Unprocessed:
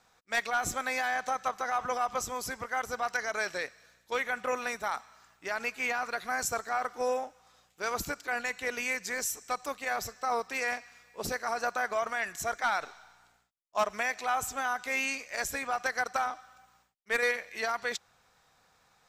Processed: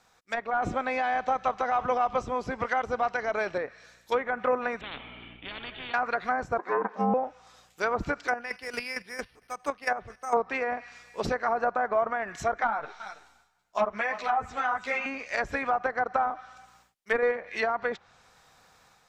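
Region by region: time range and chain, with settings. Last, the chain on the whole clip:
0.62–3.58 band shelf 5100 Hz +11.5 dB 2.5 oct + three-band squash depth 40%
4.81–5.94 vocal tract filter i + spectral compressor 10:1
6.58–7.14 ring modulator 300 Hz + brick-wall FIR high-pass 200 Hz + tilt -2.5 dB/oct
8.28–10.37 careless resampling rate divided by 6×, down filtered, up hold + chopper 4.4 Hz, depth 65%, duty 25% + three-band expander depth 40%
12.67–15.06 echo 0.328 s -15 dB + ensemble effect
whole clip: treble ducked by the level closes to 1000 Hz, closed at -28 dBFS; AGC gain up to 5 dB; gain +2 dB

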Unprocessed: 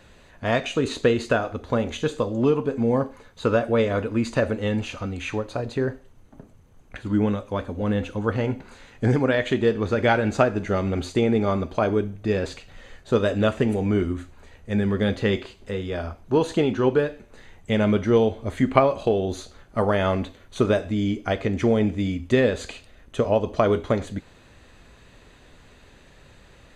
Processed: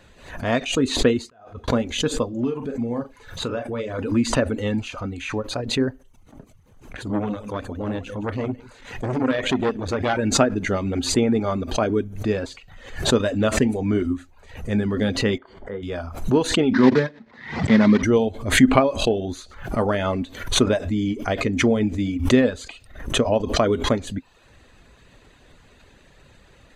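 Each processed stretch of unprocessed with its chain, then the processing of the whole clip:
1.27–1.68 compressor 4:1, threshold -23 dBFS + notch comb 290 Hz + flipped gate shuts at -35 dBFS, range -33 dB
2.29–3.99 compressor 2:1, threshold -29 dBFS + doubler 42 ms -8 dB
7.04–10.19 feedback echo 0.158 s, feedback 25%, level -14.5 dB + core saturation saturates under 1000 Hz
15.38–15.83 polynomial smoothing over 41 samples + low shelf 180 Hz -11 dB
16.74–18.03 block floating point 3-bit + speaker cabinet 130–4400 Hz, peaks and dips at 150 Hz +8 dB, 230 Hz +9 dB, 1000 Hz +5 dB, 1900 Hz +8 dB, 2800 Hz -6 dB
whole clip: reverb removal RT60 0.55 s; dynamic EQ 260 Hz, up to +8 dB, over -41 dBFS, Q 4.6; backwards sustainer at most 94 dB/s

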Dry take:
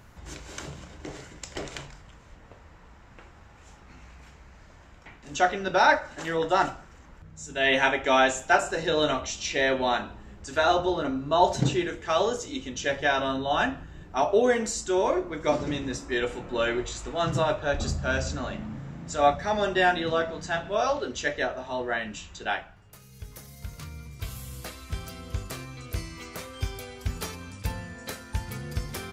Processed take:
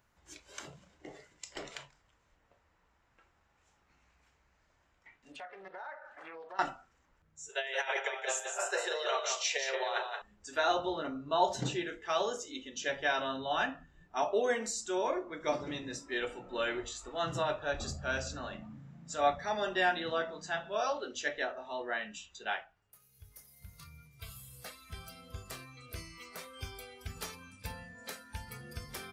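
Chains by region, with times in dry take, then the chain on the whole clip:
5.32–6.59 tone controls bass -8 dB, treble -13 dB + compressor 4:1, threshold -38 dBFS + Doppler distortion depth 0.48 ms
7.49–10.22 steep high-pass 380 Hz 72 dB/oct + negative-ratio compressor -27 dBFS, ratio -0.5 + echo 0.177 s -6 dB
whole clip: spectral noise reduction 11 dB; low shelf 450 Hz -6.5 dB; notches 50/100/150/200/250 Hz; gain -5.5 dB

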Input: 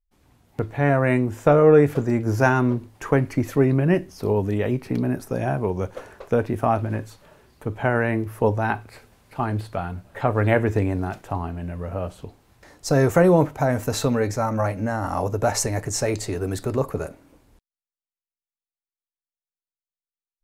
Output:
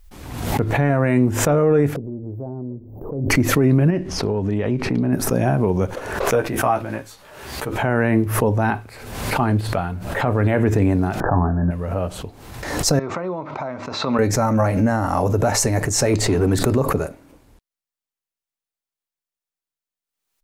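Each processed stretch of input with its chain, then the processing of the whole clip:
1.96–3.3 inverse Chebyshev band-stop 2100–7700 Hz, stop band 70 dB + compressor 2:1, threshold -42 dBFS
3.9–5.13 compressor 5:1, threshold -22 dBFS + air absorption 75 m
6.25–7.82 low shelf 480 Hz -9 dB + doubler 15 ms -4 dB
11.2–11.71 sample leveller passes 1 + brick-wall FIR low-pass 1800 Hz + doubler 22 ms -10.5 dB
12.99–14.19 compressor, threshold -22 dBFS + speaker cabinet 270–4000 Hz, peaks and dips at 290 Hz -5 dB, 460 Hz -10 dB, 760 Hz -4 dB, 1100 Hz +4 dB, 1700 Hz -9 dB, 3000 Hz -9 dB
16.13–16.58 high shelf 5600 Hz -7.5 dB + sample leveller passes 1
whole clip: dynamic EQ 200 Hz, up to +5 dB, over -30 dBFS, Q 0.91; limiter -11.5 dBFS; backwards sustainer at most 52 dB/s; gain +4 dB

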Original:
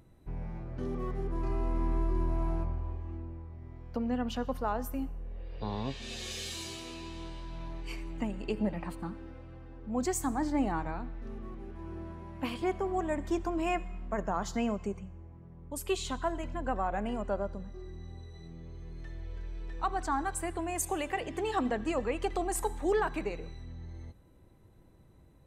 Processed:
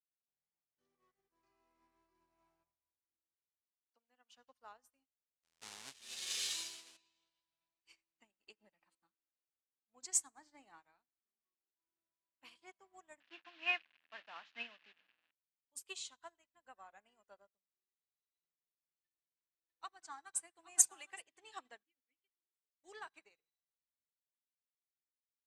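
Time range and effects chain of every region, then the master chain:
3.61–4.37 HPF 470 Hz 6 dB/oct + dynamic EQ 4700 Hz, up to -5 dB, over -58 dBFS, Q 1.1
5.43–6.97 half-waves squared off + high shelf 3500 Hz +3.5 dB
13.2–15.31 delta modulation 64 kbps, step -33.5 dBFS + speaker cabinet 160–3600 Hz, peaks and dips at 190 Hz -4 dB, 280 Hz +4 dB, 400 Hz -7 dB, 1700 Hz +8 dB, 2700 Hz +9 dB
18.37–21.22 comb 5.9 ms, depth 33% + echo 0.816 s -8.5 dB
21.83–22.84 vowel filter i + notch 2500 Hz
whole clip: weighting filter ITU-R 468; upward expander 2.5:1, over -53 dBFS; gain -3 dB

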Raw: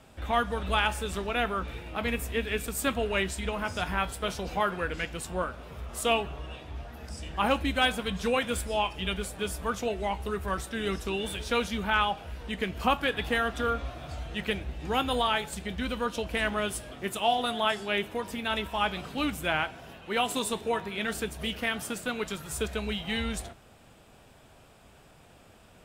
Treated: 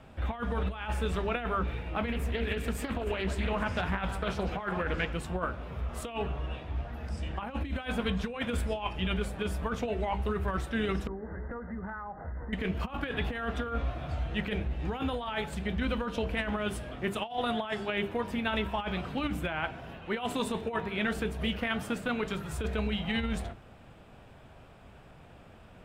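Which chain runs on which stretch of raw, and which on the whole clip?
2.12–5.13 split-band echo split 1600 Hz, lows 0.147 s, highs 0.283 s, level -15 dB + Doppler distortion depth 0.27 ms
11.07–12.53 brick-wall FIR low-pass 2100 Hz + compressor 10:1, threshold -38 dBFS
whole clip: tone controls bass +4 dB, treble -13 dB; notches 50/100/150/200/250/300/350/400/450 Hz; negative-ratio compressor -30 dBFS, ratio -0.5

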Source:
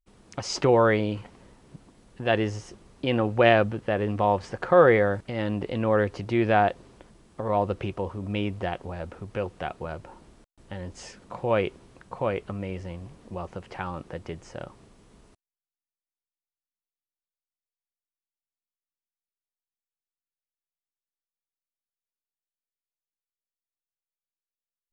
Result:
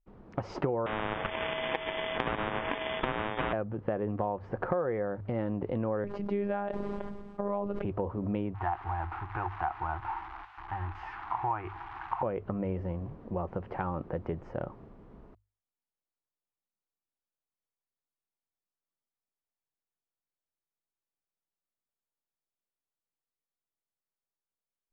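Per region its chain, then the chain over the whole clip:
0.86–3.53 sample sorter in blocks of 32 samples + inverted band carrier 3400 Hz + spectral compressor 10:1
6.04–7.85 high shelf 4200 Hz +8.5 dB + robotiser 202 Hz + sustainer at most 38 dB/s
8.54–12.23 switching spikes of -20 dBFS + EQ curve 100 Hz 0 dB, 230 Hz -22 dB, 330 Hz -3 dB, 530 Hz -28 dB, 800 Hz +10 dB, 1600 Hz +3 dB, 2700 Hz -2 dB, 7900 Hz -27 dB
whole clip: LPF 1200 Hz 12 dB/oct; notches 50/100 Hz; compressor 10:1, threshold -31 dBFS; gain +3.5 dB

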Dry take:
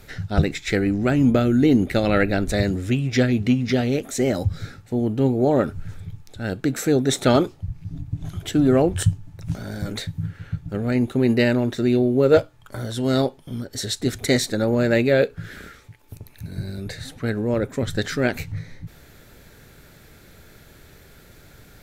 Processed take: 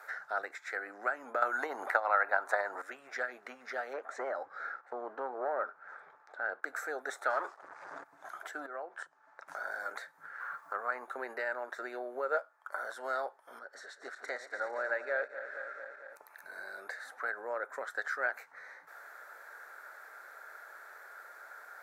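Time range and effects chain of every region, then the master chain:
1.42–2.82 bell 950 Hz +14 dB 0.88 oct + transient shaper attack +9 dB, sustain +4 dB + three-band squash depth 100%
3.93–6.63 sample leveller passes 1 + tape spacing loss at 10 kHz 23 dB
7.3–8.04 steep low-pass 9000 Hz + compressor 2.5:1, threshold -21 dBFS + sample leveller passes 3
8.66–9.48 compressor 2.5:1, threshold -35 dBFS + BPF 140–5300 Hz
10.4–11.07 bell 1100 Hz +14 dB 0.37 oct + requantised 10-bit, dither none
13.59–16.16 regenerating reverse delay 0.113 s, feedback 76%, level -11 dB + air absorption 67 m + upward expander, over -28 dBFS
whole clip: HPF 650 Hz 24 dB/oct; compressor 2:1, threshold -44 dBFS; resonant high shelf 2100 Hz -11.5 dB, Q 3; gain +1.5 dB

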